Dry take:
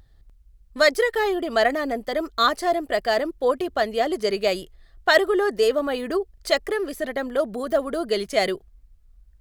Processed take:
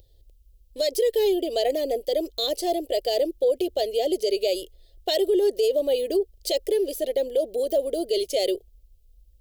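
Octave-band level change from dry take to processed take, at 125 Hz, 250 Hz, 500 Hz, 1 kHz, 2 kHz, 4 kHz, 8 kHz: no reading, -2.0 dB, 0.0 dB, -9.5 dB, -18.5 dB, -1.0 dB, +1.5 dB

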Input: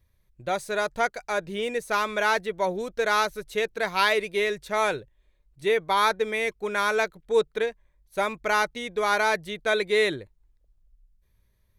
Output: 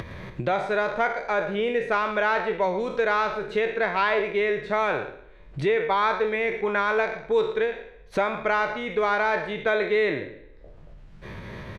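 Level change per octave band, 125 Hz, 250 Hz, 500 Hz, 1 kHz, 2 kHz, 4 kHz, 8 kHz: +7.0 dB, +3.5 dB, +2.0 dB, +1.0 dB, +0.5 dB, -5.5 dB, under -10 dB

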